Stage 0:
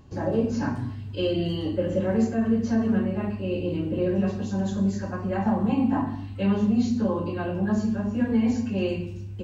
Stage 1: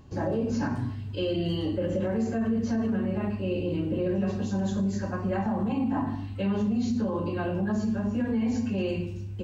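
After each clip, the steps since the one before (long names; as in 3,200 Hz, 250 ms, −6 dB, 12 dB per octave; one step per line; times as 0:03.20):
brickwall limiter −20 dBFS, peak gain reduction 6.5 dB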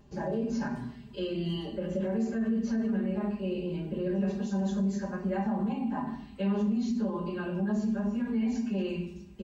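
comb filter 5 ms, depth 98%
level −7 dB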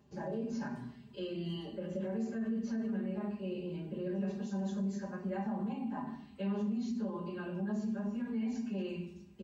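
high-pass filter 73 Hz 24 dB per octave
level −6.5 dB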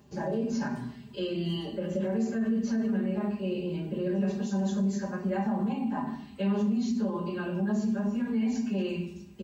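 high-shelf EQ 4,800 Hz +5 dB
level +7.5 dB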